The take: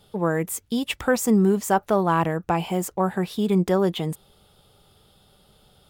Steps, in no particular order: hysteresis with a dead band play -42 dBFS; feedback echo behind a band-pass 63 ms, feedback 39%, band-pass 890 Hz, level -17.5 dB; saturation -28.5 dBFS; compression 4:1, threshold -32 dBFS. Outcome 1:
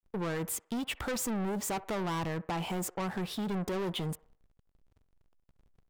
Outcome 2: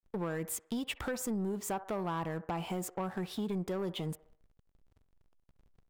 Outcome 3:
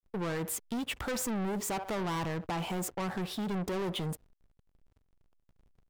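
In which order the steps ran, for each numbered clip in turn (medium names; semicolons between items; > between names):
hysteresis with a dead band > saturation > feedback echo behind a band-pass > compression; hysteresis with a dead band > feedback echo behind a band-pass > compression > saturation; feedback echo behind a band-pass > saturation > hysteresis with a dead band > compression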